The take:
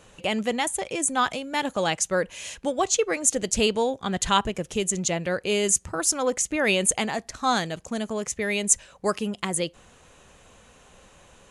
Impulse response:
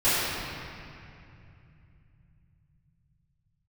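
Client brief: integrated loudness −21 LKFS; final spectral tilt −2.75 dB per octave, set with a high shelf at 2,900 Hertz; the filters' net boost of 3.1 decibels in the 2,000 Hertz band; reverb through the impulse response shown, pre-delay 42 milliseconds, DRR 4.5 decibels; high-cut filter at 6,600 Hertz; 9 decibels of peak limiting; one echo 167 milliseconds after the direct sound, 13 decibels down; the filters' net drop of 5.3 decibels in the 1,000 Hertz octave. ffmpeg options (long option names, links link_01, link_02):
-filter_complex "[0:a]lowpass=6600,equalizer=frequency=1000:width_type=o:gain=-9,equalizer=frequency=2000:width_type=o:gain=5,highshelf=frequency=2900:gain=3.5,alimiter=limit=-15.5dB:level=0:latency=1,aecho=1:1:167:0.224,asplit=2[link_01][link_02];[1:a]atrim=start_sample=2205,adelay=42[link_03];[link_02][link_03]afir=irnorm=-1:irlink=0,volume=-22dB[link_04];[link_01][link_04]amix=inputs=2:normalize=0,volume=5dB"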